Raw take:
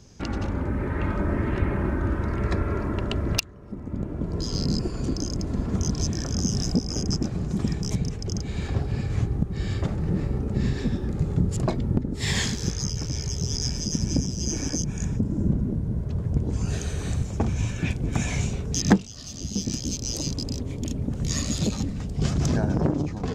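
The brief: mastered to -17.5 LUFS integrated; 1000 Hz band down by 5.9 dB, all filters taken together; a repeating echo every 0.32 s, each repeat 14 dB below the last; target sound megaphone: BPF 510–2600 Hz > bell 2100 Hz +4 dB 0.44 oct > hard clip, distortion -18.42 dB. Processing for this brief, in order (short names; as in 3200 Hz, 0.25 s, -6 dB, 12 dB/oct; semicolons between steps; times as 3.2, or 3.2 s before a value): BPF 510–2600 Hz; bell 1000 Hz -7.5 dB; bell 2100 Hz +4 dB 0.44 oct; feedback echo 0.32 s, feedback 20%, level -14 dB; hard clip -23 dBFS; gain +22 dB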